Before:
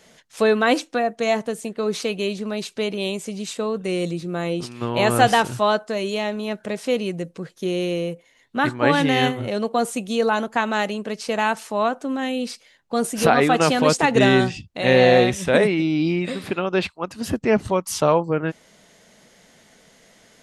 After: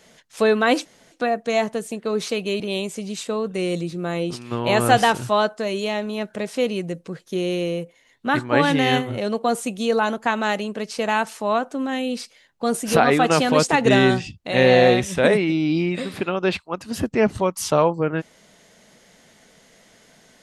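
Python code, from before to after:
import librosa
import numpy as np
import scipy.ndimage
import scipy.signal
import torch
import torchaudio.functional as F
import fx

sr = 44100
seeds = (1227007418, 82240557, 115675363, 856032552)

y = fx.edit(x, sr, fx.insert_room_tone(at_s=0.85, length_s=0.27),
    fx.cut(start_s=2.33, length_s=0.57), tone=tone)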